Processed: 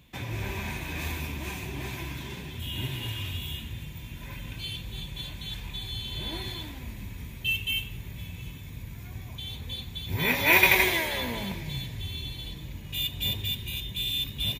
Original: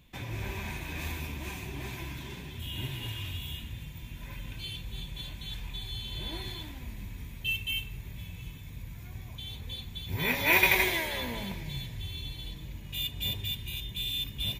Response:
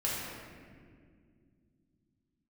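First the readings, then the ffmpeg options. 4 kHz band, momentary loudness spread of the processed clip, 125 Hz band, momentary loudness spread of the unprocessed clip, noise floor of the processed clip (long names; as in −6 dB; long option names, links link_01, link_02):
+3.5 dB, 16 LU, +3.0 dB, 15 LU, −42 dBFS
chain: -filter_complex "[0:a]highpass=49,asplit=2[link_01][link_02];[link_02]asplit=3[link_03][link_04][link_05];[link_03]adelay=88,afreqshift=140,volume=-21dB[link_06];[link_04]adelay=176,afreqshift=280,volume=-28.7dB[link_07];[link_05]adelay=264,afreqshift=420,volume=-36.5dB[link_08];[link_06][link_07][link_08]amix=inputs=3:normalize=0[link_09];[link_01][link_09]amix=inputs=2:normalize=0,volume=3.5dB"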